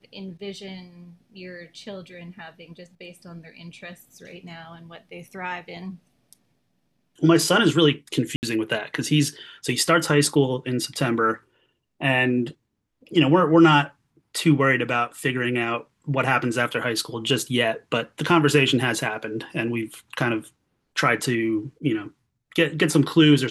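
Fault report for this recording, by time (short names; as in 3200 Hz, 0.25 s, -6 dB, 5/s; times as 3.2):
8.36–8.43 gap 69 ms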